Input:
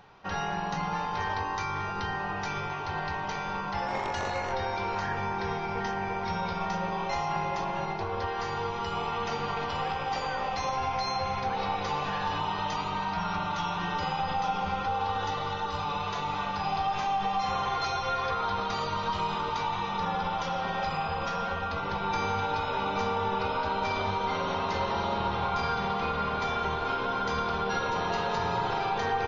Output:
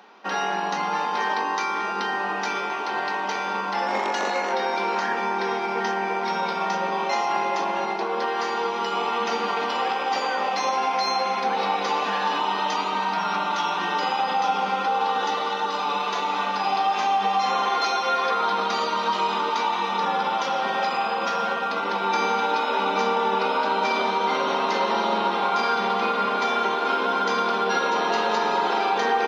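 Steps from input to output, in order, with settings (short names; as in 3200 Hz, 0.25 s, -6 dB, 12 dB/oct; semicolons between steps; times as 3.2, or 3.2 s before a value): in parallel at -12 dB: crossover distortion -43.5 dBFS; on the sum: Chebyshev high-pass 210 Hz, order 5; gain +6 dB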